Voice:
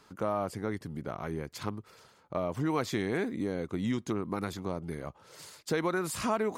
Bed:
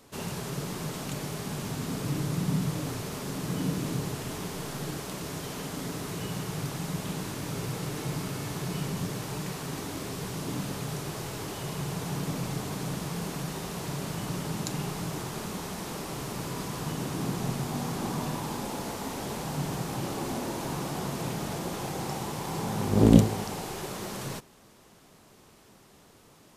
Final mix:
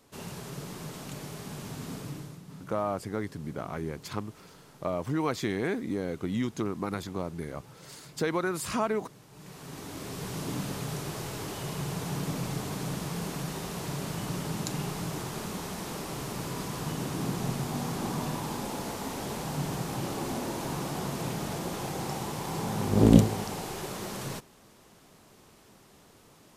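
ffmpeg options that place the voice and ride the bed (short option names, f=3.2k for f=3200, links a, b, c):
-filter_complex "[0:a]adelay=2500,volume=1dB[a];[1:a]volume=13dB,afade=t=out:st=1.93:d=0.48:silence=0.211349,afade=t=in:st=9.31:d=1.06:silence=0.11885[b];[a][b]amix=inputs=2:normalize=0"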